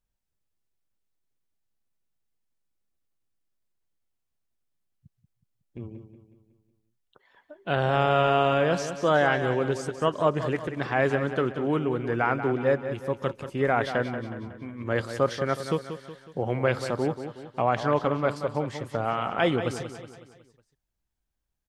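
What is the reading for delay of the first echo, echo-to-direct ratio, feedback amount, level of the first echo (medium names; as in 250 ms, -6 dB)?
184 ms, -9.0 dB, 48%, -10.0 dB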